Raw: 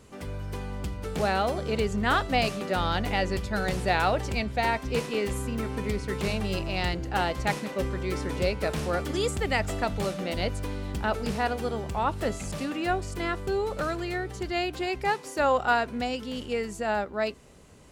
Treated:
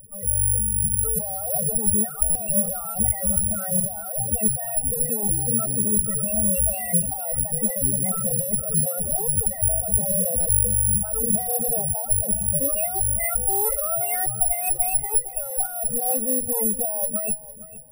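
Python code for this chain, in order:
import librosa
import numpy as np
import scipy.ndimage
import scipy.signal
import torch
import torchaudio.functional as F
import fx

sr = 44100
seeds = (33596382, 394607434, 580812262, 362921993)

p1 = fx.lower_of_two(x, sr, delay_ms=1.5)
p2 = fx.peak_eq(p1, sr, hz=68.0, db=-13.5, octaves=1.0)
p3 = fx.hum_notches(p2, sr, base_hz=60, count=6)
p4 = fx.quant_dither(p3, sr, seeds[0], bits=8, dither='none')
p5 = p3 + (p4 * 10.0 ** (-6.0 / 20.0))
p6 = fx.over_compress(p5, sr, threshold_db=-30.0, ratio=-1.0)
p7 = fx.spec_topn(p6, sr, count=4)
p8 = fx.low_shelf(p7, sr, hz=330.0, db=9.5)
p9 = p8 + fx.echo_feedback(p8, sr, ms=461, feedback_pct=26, wet_db=-17, dry=0)
p10 = (np.kron(scipy.signal.resample_poly(p9, 1, 4), np.eye(4)[0]) * 4)[:len(p9)]
y = fx.buffer_glitch(p10, sr, at_s=(2.3, 10.4), block=256, repeats=8)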